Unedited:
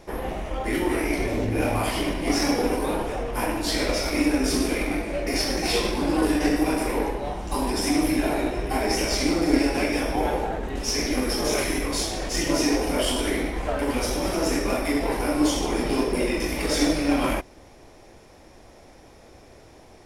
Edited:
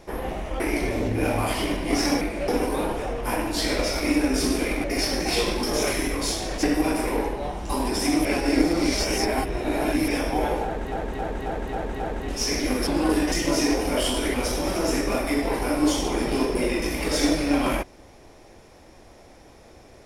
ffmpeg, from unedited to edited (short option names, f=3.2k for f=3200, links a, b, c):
-filter_complex "[0:a]asplit=17[a][b][c][d][e][f][g][h][i][j][k][l][m][n][o][p][q];[a]atrim=end=0.602[r];[b]atrim=start=0.968:end=2.582[s];[c]atrim=start=4.938:end=5.212[t];[d]atrim=start=2.578:end=4.942[u];[e]atrim=start=5.208:end=6.002[v];[f]atrim=start=11.338:end=12.342[w];[g]atrim=start=6.448:end=8.072[x];[h]atrim=start=8.068:end=9.902,asetpts=PTS-STARTPTS,areverse[y];[i]atrim=start=9.898:end=10.742[z];[j]atrim=start=10.468:end=10.742[aa];[k]atrim=start=10.468:end=10.742[ab];[l]atrim=start=10.468:end=10.742[ac];[m]atrim=start=10.468:end=10.742[ad];[n]atrim=start=10.468:end=11.342[ae];[o]atrim=start=5.998:end=6.452[af];[p]atrim=start=12.338:end=13.362[ag];[q]atrim=start=13.918[ah];[r][s]acrossfade=d=0.004:c1=hsin:c2=hsin[ai];[ai][t]acrossfade=d=0.004:c1=hsin:c2=hsin[aj];[aj][u]acrossfade=d=0.004:c1=hsin:c2=hsin[ak];[ak][v]acrossfade=d=0.004:c1=hsin:c2=hsin[al];[al][w]acrossfade=d=0.004:c1=hsin:c2=hsin[am];[am][x]acrossfade=d=0.004:c1=hsin:c2=hsin[an];[an][y]acrossfade=d=0.004:c1=hsin:c2=hsin[ao];[ao][z]acrossfade=d=0.004:c1=hsin:c2=hsin[ap];[ap][aa]acrossfade=d=0.004:c1=hsin:c2=hsin[aq];[aq][ab]acrossfade=d=0.004:c1=hsin:c2=hsin[ar];[ar][ac]acrossfade=d=0.004:c1=hsin:c2=hsin[as];[as][ad]acrossfade=d=0.004:c1=hsin:c2=hsin[at];[at][ae]acrossfade=d=0.004:c1=hsin:c2=hsin[au];[au][af]acrossfade=d=0.004:c1=hsin:c2=hsin[av];[av][ag]acrossfade=d=0.004:c1=hsin:c2=hsin[aw];[aw][ah]acrossfade=d=0.004:c1=hsin:c2=hsin"